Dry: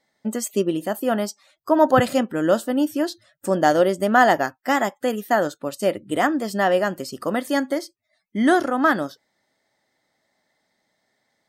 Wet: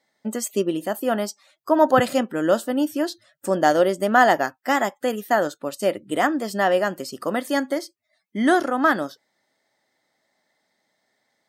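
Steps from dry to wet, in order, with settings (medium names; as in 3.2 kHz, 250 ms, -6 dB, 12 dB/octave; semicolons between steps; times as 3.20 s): high-pass 180 Hz 6 dB/octave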